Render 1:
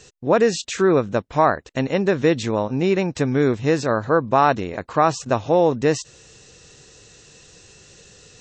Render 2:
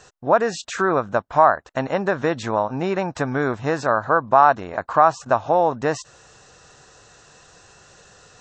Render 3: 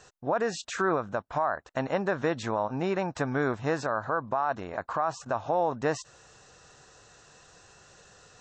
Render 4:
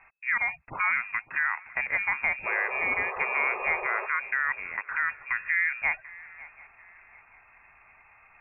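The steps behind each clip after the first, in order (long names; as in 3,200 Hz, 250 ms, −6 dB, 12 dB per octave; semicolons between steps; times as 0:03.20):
flat-topped bell 1,000 Hz +11.5 dB; in parallel at +0.5 dB: downward compressor, threshold −15 dBFS, peak gain reduction 14.5 dB; on the sum: level −10 dB
brickwall limiter −11.5 dBFS, peak gain reduction 10 dB; level −5.5 dB
voice inversion scrambler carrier 2,600 Hz; sound drawn into the spectrogram noise, 0:02.45–0:04.06, 360–1,300 Hz −36 dBFS; feedback echo with a long and a short gap by turns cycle 738 ms, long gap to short 3 to 1, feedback 32%, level −20 dB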